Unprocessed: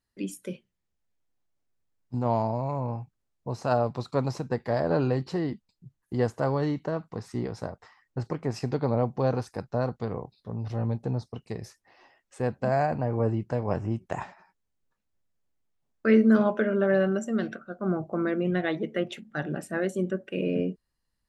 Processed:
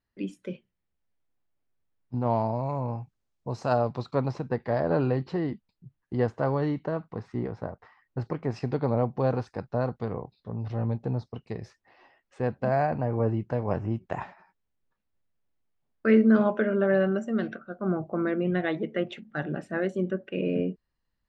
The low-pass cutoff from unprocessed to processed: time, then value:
2.21 s 3.3 kHz
2.81 s 7 kHz
3.76 s 7 kHz
4.23 s 3.3 kHz
6.96 s 3.3 kHz
7.64 s 1.9 kHz
8.21 s 3.7 kHz

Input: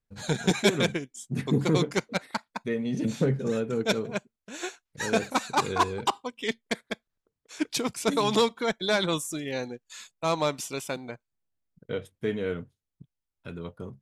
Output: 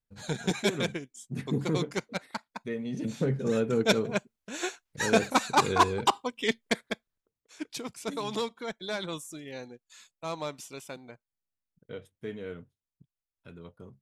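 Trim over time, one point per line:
3.15 s -5 dB
3.62 s +2 dB
6.79 s +2 dB
7.56 s -9 dB

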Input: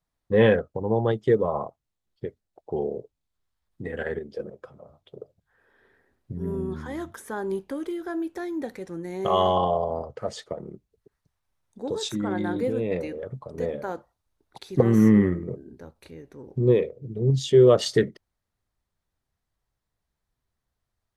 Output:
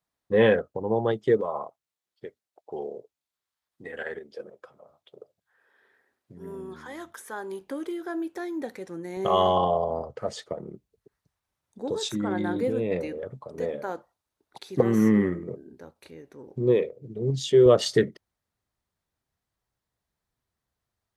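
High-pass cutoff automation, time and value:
high-pass 6 dB/octave
210 Hz
from 1.41 s 770 Hz
from 7.61 s 230 Hz
from 9.17 s 81 Hz
from 13.31 s 240 Hz
from 17.66 s 90 Hz

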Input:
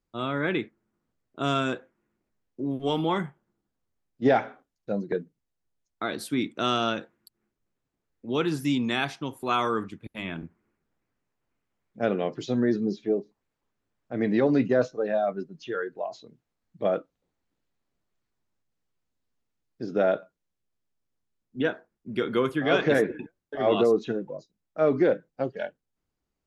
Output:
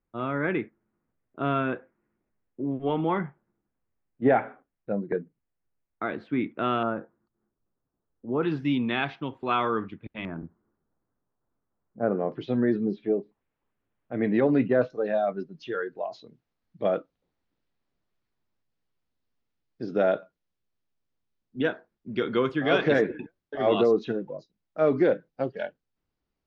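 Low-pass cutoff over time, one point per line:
low-pass 24 dB/octave
2.4 kHz
from 6.83 s 1.4 kHz
from 8.43 s 3.3 kHz
from 10.25 s 1.4 kHz
from 12.32 s 3.2 kHz
from 14.90 s 5.3 kHz

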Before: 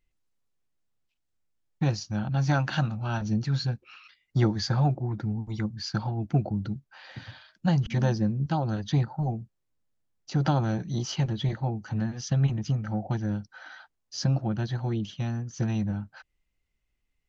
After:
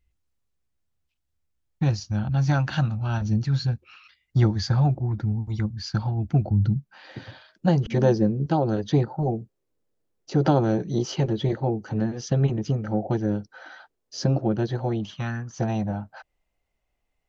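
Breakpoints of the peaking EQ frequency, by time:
peaking EQ +14 dB 1.2 oct
6.44 s 66 Hz
7.21 s 420 Hz
14.75 s 420 Hz
15.37 s 1.8 kHz
15.57 s 690 Hz

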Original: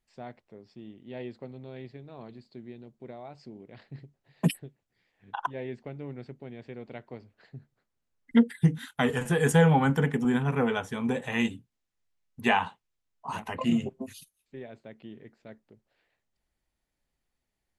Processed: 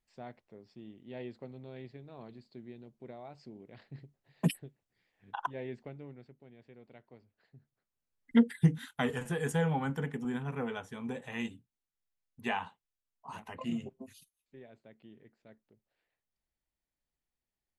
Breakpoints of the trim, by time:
5.82 s -4 dB
6.33 s -13.5 dB
7.56 s -13.5 dB
8.53 s -1.5 dB
9.50 s -10 dB

